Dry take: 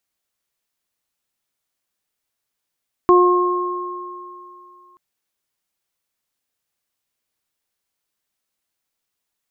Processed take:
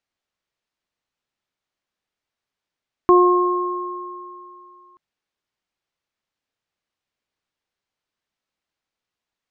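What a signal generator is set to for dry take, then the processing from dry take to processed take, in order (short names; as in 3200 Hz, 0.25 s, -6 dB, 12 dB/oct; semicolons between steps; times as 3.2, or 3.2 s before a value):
additive tone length 1.88 s, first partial 358 Hz, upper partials -12.5/-2.5 dB, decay 2.28 s, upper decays 1.43/3.03 s, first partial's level -9 dB
air absorption 120 m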